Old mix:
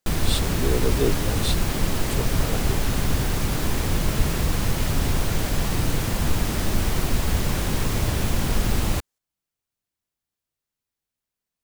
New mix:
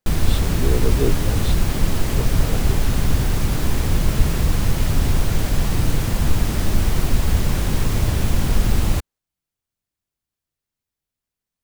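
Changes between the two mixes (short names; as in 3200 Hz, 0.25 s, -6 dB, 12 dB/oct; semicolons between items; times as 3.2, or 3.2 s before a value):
speech: add high shelf 3800 Hz -11.5 dB; master: add low shelf 170 Hz +6 dB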